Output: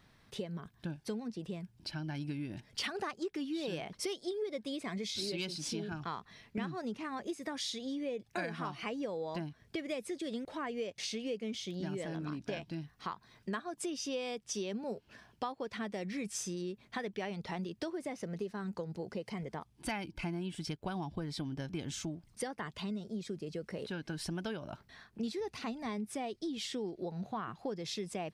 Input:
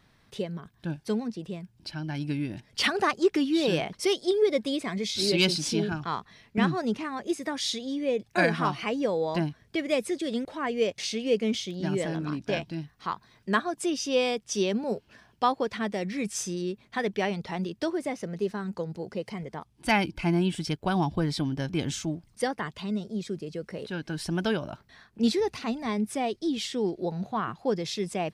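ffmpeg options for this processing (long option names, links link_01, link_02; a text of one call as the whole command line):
ffmpeg -i in.wav -af "acompressor=threshold=-34dB:ratio=5,volume=-2dB" out.wav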